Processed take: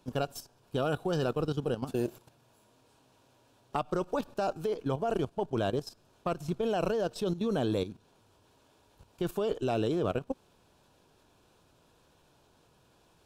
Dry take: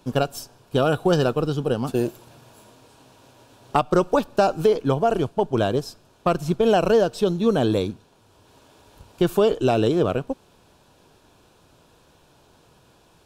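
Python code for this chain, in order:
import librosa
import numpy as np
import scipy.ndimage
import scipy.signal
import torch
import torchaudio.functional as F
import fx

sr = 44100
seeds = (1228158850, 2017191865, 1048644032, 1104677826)

y = fx.level_steps(x, sr, step_db=12)
y = F.gain(torch.from_numpy(y), -5.0).numpy()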